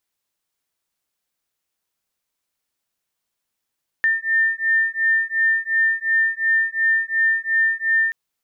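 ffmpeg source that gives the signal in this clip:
-f lavfi -i "aevalsrc='0.106*(sin(2*PI*1800*t)+sin(2*PI*1802.8*t))':d=4.08:s=44100"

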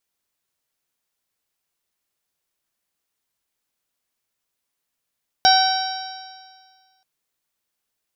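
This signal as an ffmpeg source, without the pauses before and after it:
-f lavfi -i "aevalsrc='0.251*pow(10,-3*t/1.75)*sin(2*PI*759.72*t)+0.106*pow(10,-3*t/1.75)*sin(2*PI*1523.76*t)+0.0335*pow(10,-3*t/1.75)*sin(2*PI*2296.39*t)+0.0501*pow(10,-3*t/1.75)*sin(2*PI*3081.8*t)+0.112*pow(10,-3*t/1.75)*sin(2*PI*3884.09*t)+0.0891*pow(10,-3*t/1.75)*sin(2*PI*4707.17*t)+0.178*pow(10,-3*t/1.75)*sin(2*PI*5554.82*t)':d=1.58:s=44100"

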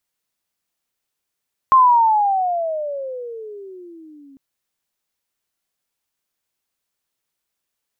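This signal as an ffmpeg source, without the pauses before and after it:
-f lavfi -i "aevalsrc='pow(10,(-7-35*t/2.65)/20)*sin(2*PI*1070*2.65/(-24*log(2)/12)*(exp(-24*log(2)/12*t/2.65)-1))':d=2.65:s=44100"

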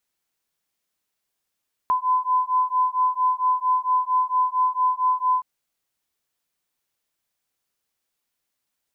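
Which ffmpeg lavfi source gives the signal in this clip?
-f lavfi -i "aevalsrc='0.0841*(sin(2*PI*1010*t)+sin(2*PI*1014.4*t))':d=3.52:s=44100"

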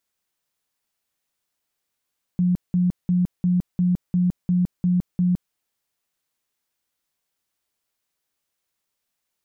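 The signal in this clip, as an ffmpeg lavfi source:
-f lavfi -i "aevalsrc='0.158*sin(2*PI*179*mod(t,0.35))*lt(mod(t,0.35),29/179)':d=3.15:s=44100"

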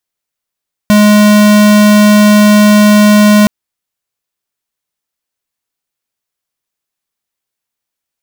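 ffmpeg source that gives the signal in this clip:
-f lavfi -i "aevalsrc='0.562*(2*lt(mod(209*t,1),0.5)-1)':d=2.57:s=44100"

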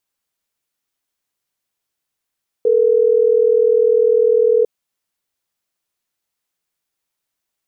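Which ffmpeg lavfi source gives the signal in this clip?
-f lavfi -i "aevalsrc='0.224*(sin(2*PI*440*t)+sin(2*PI*480*t))*clip(min(mod(t,6),2-mod(t,6))/0.005,0,1)':d=3.12:s=44100"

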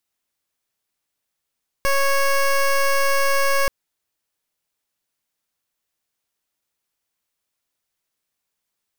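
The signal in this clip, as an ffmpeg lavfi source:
-f lavfi -i "aevalsrc='0.133*(2*lt(mod(552*t,1),0.15)-1)':d=1.83:s=44100"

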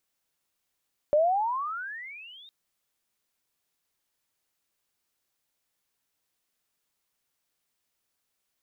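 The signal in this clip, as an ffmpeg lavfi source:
-f lavfi -i "aevalsrc='pow(10,(-17.5-30*t/1.36)/20)*sin(2*PI*577*1.36/(32.5*log(2)/12)*(exp(32.5*log(2)/12*t/1.36)-1))':d=1.36:s=44100"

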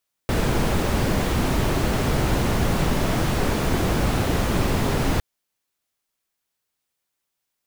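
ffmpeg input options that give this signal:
-f lavfi -i "anoisesrc=c=brown:a=0.442:d=4.91:r=44100:seed=1"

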